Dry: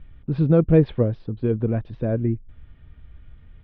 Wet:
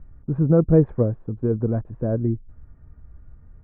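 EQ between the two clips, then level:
low-pass filter 1,400 Hz 24 dB per octave
0.0 dB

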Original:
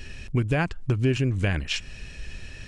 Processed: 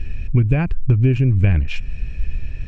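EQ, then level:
RIAA equalisation playback
parametric band 2,400 Hz +9 dB 0.21 octaves
−2.0 dB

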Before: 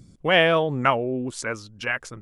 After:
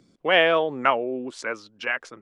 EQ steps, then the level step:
three-way crossover with the lows and the highs turned down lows −21 dB, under 240 Hz, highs −14 dB, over 5,400 Hz
0.0 dB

